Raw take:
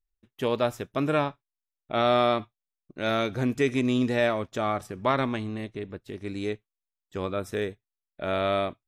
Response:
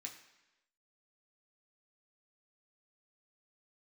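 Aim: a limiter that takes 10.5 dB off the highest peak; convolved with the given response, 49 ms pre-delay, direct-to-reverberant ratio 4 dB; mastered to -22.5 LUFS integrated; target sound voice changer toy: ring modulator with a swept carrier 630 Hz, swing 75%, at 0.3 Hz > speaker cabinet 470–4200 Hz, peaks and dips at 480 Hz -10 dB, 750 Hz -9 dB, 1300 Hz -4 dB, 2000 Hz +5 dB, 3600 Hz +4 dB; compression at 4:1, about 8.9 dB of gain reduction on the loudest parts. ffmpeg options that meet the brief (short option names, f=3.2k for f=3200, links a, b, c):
-filter_complex "[0:a]acompressor=threshold=-29dB:ratio=4,alimiter=level_in=5dB:limit=-24dB:level=0:latency=1,volume=-5dB,asplit=2[a][b];[1:a]atrim=start_sample=2205,adelay=49[c];[b][c]afir=irnorm=-1:irlink=0,volume=0dB[d];[a][d]amix=inputs=2:normalize=0,aeval=exprs='val(0)*sin(2*PI*630*n/s+630*0.75/0.3*sin(2*PI*0.3*n/s))':c=same,highpass=470,equalizer=f=480:t=q:w=4:g=-10,equalizer=f=750:t=q:w=4:g=-9,equalizer=f=1.3k:t=q:w=4:g=-4,equalizer=f=2k:t=q:w=4:g=5,equalizer=f=3.6k:t=q:w=4:g=4,lowpass=f=4.2k:w=0.5412,lowpass=f=4.2k:w=1.3066,volume=22dB"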